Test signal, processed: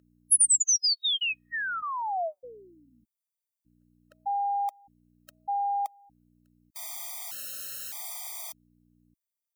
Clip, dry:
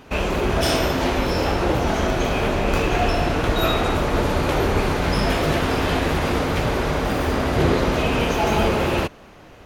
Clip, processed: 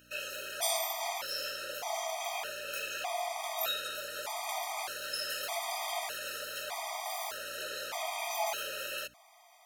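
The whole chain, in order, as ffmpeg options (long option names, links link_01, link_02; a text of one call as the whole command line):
ffmpeg -i in.wav -af "highpass=frequency=680:width_type=q:width=3.7,aeval=exprs='val(0)+0.0398*(sin(2*PI*60*n/s)+sin(2*PI*2*60*n/s)/2+sin(2*PI*3*60*n/s)/3+sin(2*PI*4*60*n/s)/4+sin(2*PI*5*60*n/s)/5)':channel_layout=same,aderivative,afftfilt=real='re*gt(sin(2*PI*0.82*pts/sr)*(1-2*mod(floor(b*sr/1024/630),2)),0)':imag='im*gt(sin(2*PI*0.82*pts/sr)*(1-2*mod(floor(b*sr/1024/630),2)),0)':win_size=1024:overlap=0.75" out.wav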